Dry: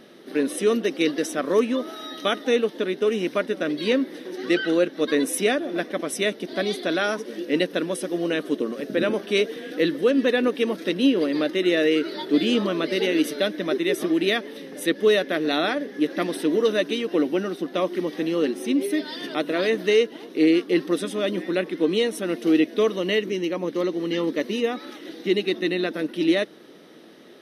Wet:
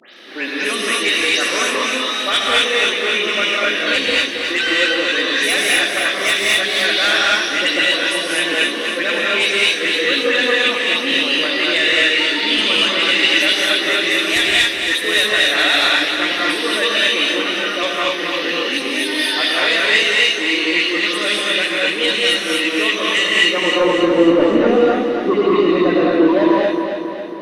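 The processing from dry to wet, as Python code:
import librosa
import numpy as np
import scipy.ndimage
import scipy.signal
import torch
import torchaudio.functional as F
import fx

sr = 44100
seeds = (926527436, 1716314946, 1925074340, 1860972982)

p1 = fx.spec_delay(x, sr, highs='late', ms=161)
p2 = fx.high_shelf(p1, sr, hz=2700.0, db=4.5)
p3 = fx.rider(p2, sr, range_db=5, speed_s=0.5)
p4 = p2 + (p3 * 10.0 ** (-2.0 / 20.0))
p5 = 10.0 ** (-5.5 / 20.0) * np.tanh(p4 / 10.0 ** (-5.5 / 20.0))
p6 = fx.filter_sweep_bandpass(p5, sr, from_hz=2600.0, to_hz=480.0, start_s=23.23, end_s=24.05, q=0.95)
p7 = fx.dmg_crackle(p6, sr, seeds[0], per_s=12.0, level_db=-50.0)
p8 = fx.fold_sine(p7, sr, drive_db=7, ceiling_db=-7.5)
p9 = p8 + fx.echo_feedback(p8, sr, ms=273, feedback_pct=56, wet_db=-7.0, dry=0)
p10 = fx.rev_gated(p9, sr, seeds[1], gate_ms=270, shape='rising', drr_db=-4.0)
y = p10 * 10.0 ** (-5.0 / 20.0)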